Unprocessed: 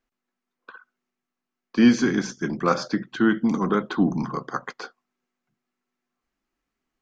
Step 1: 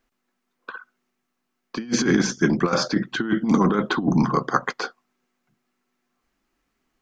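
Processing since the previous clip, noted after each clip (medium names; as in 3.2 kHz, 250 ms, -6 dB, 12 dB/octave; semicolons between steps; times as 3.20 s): compressor with a negative ratio -23 dBFS, ratio -0.5; trim +4.5 dB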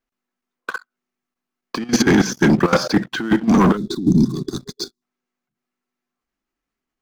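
waveshaping leveller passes 3; time-frequency box 3.77–5.02 s, 410–3400 Hz -24 dB; level held to a coarse grid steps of 12 dB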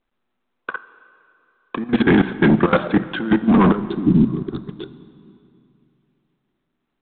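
local Wiener filter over 15 samples; plate-style reverb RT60 2.7 s, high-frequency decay 0.8×, DRR 14 dB; µ-law 64 kbps 8 kHz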